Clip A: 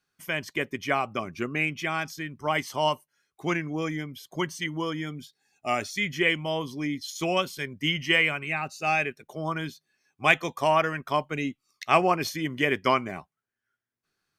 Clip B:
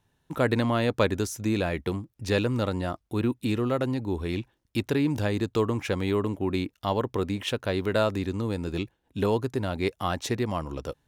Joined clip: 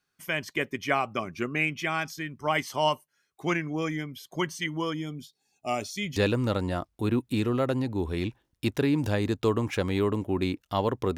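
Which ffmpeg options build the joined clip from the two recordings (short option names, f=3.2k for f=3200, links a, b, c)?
-filter_complex "[0:a]asettb=1/sr,asplit=3[a][b][c];[a]atrim=end=4.944[d];[b]atrim=start=4.94:end=6.16,asetpts=PTS-STARTPTS,afade=t=in:d=0.004:c=qsin,afade=t=out:st=1.216:d=0.004:c=qsin,equalizer=f=1.7k:t=o:w=0.82:g=-13[e];[c]atrim=start=6.156[f];[d][e]acrossfade=d=0.004:c1=hsin:c2=qsin[g];[g][f]acrossfade=d=0.004:c1=qsin:c2=hsin,apad=whole_dur=11.17,atrim=end=11.17,atrim=end=6.162[h];[1:a]atrim=start=2.278:end=7.29[i];[h][i]acrossfade=d=0.004:c1=hsin:c2=hsin"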